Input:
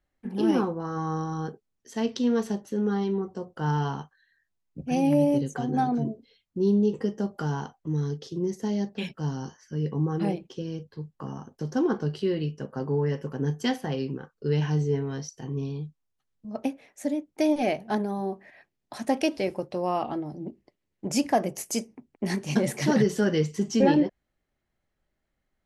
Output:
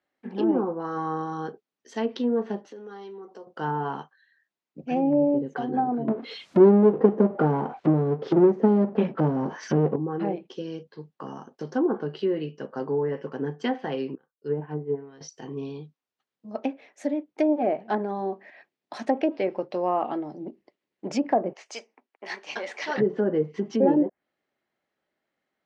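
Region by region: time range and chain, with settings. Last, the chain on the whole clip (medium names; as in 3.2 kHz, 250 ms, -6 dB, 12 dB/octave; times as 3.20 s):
2.68–3.47 s: high-pass 310 Hz + compression 3:1, threshold -43 dBFS
6.08–9.96 s: treble shelf 7.4 kHz +12 dB + transient shaper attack +9 dB, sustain -11 dB + power-law waveshaper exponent 0.5
14.15–15.21 s: low-pass that closes with the level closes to 970 Hz, closed at -20.5 dBFS + upward expansion 2.5:1, over -39 dBFS
21.53–22.98 s: high-pass 800 Hz + distance through air 91 m
whole clip: low-pass 4.6 kHz 12 dB/octave; low-pass that closes with the level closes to 740 Hz, closed at -19.5 dBFS; high-pass 280 Hz 12 dB/octave; trim +3 dB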